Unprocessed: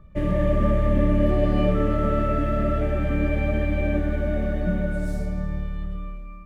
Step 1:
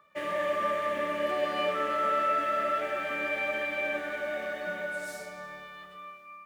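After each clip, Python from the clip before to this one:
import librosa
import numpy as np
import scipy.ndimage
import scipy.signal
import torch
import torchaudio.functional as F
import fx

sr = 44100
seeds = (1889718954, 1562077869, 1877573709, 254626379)

y = scipy.signal.sosfilt(scipy.signal.butter(2, 930.0, 'highpass', fs=sr, output='sos'), x)
y = y * 10.0 ** (4.0 / 20.0)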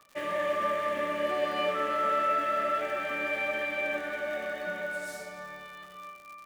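y = fx.dmg_crackle(x, sr, seeds[0], per_s=130.0, level_db=-41.0)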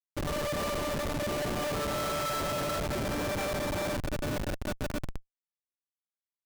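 y = fx.schmitt(x, sr, flips_db=-29.0)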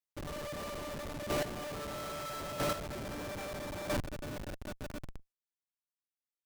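y = fx.chopper(x, sr, hz=0.77, depth_pct=65, duty_pct=10)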